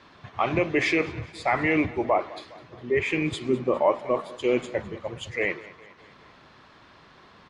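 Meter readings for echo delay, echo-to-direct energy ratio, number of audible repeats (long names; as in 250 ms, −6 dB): 205 ms, −18.0 dB, 3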